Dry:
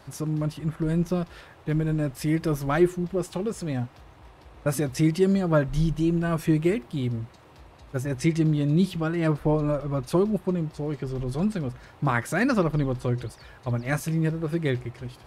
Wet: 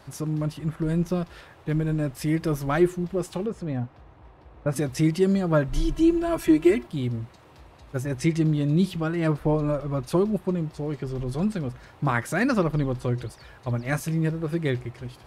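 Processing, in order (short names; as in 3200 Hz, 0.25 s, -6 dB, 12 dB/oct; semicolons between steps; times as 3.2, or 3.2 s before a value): 3.46–4.76 LPF 1400 Hz 6 dB/oct; 5.72–6.87 comb 3 ms, depth 95%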